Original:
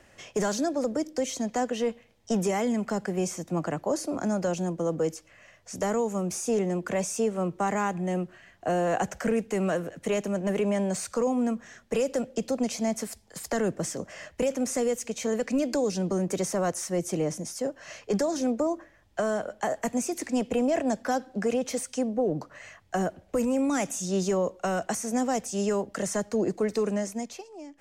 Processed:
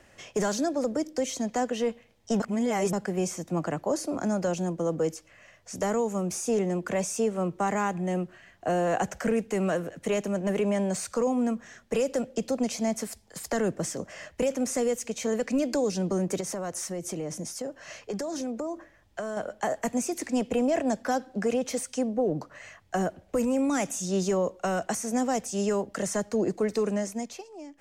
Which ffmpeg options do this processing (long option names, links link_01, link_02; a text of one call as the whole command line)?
ffmpeg -i in.wav -filter_complex "[0:a]asettb=1/sr,asplit=3[link_01][link_02][link_03];[link_01]atrim=end=16.404[link_04];[link_02]atrim=start=16.4:end=19.37,asetpts=PTS-STARTPTS,afade=type=in:duration=0.004:curve=qsin,afade=type=out:start_time=2.966:duration=0.004:curve=qsin,acompressor=threshold=-29dB:ratio=6:attack=3.2:release=140:knee=1:detection=peak[link_05];[link_03]atrim=start=19.366[link_06];[link_04][link_05]acrossfade=duration=0.004:curve1=hsin:curve2=qsin[link_07];[link_07][link_06]acrossfade=duration=0.004:curve1=qsin:curve2=hsin,asplit=3[link_08][link_09][link_10];[link_08]atrim=end=2.402[link_11];[link_09]atrim=start=2.398:end=2.932,asetpts=PTS-STARTPTS,areverse[link_12];[link_10]atrim=start=2.928[link_13];[link_11][link_12]acrossfade=duration=0.004:curve1=hsin:curve2=hsin[link_14];[link_14][link_13]acrossfade=duration=0.004:curve1=hsin:curve2=hsin" out.wav